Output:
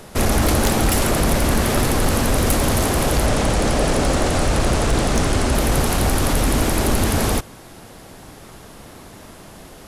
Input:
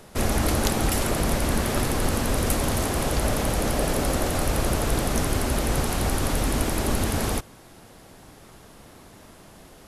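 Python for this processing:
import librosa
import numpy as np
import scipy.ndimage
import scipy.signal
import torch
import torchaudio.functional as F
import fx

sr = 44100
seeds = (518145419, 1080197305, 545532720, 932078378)

y = fx.lowpass(x, sr, hz=9600.0, slope=24, at=(3.26, 5.55))
y = 10.0 ** (-16.5 / 20.0) * np.tanh(y / 10.0 ** (-16.5 / 20.0))
y = y * librosa.db_to_amplitude(7.5)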